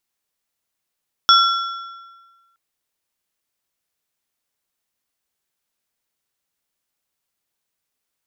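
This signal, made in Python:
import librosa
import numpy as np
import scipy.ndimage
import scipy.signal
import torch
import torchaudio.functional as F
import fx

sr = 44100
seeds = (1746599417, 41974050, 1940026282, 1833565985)

y = fx.strike_metal(sr, length_s=1.27, level_db=-9.0, body='plate', hz=1360.0, decay_s=1.45, tilt_db=2.5, modes=3)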